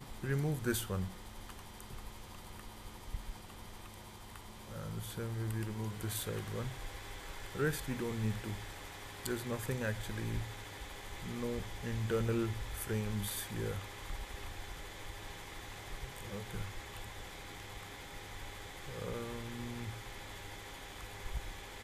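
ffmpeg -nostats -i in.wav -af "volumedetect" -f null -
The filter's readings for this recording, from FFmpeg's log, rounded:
mean_volume: -40.4 dB
max_volume: -20.1 dB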